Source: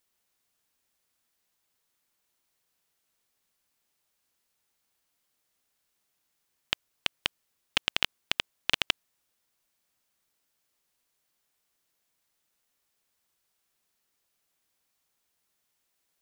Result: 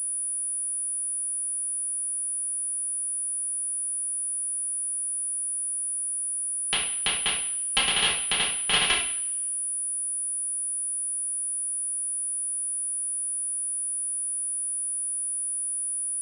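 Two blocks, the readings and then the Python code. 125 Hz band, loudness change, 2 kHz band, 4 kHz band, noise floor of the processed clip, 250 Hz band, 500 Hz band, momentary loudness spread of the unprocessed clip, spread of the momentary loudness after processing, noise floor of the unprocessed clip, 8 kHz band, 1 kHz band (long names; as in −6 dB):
+6.0 dB, +5.0 dB, +5.5 dB, +5.5 dB, −30 dBFS, +5.0 dB, +6.5 dB, 8 LU, 4 LU, −78 dBFS, +29.5 dB, +7.5 dB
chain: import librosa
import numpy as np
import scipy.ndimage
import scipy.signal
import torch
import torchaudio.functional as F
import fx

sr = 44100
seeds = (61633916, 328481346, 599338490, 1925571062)

y = fx.notch_comb(x, sr, f0_hz=310.0)
y = fx.rev_double_slope(y, sr, seeds[0], early_s=0.56, late_s=1.6, knee_db=-26, drr_db=-8.0)
y = fx.pwm(y, sr, carrier_hz=9800.0)
y = F.gain(torch.from_numpy(y), -1.0).numpy()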